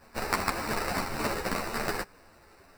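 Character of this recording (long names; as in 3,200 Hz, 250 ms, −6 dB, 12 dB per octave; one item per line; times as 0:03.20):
aliases and images of a low sample rate 3,300 Hz, jitter 0%
a shimmering, thickened sound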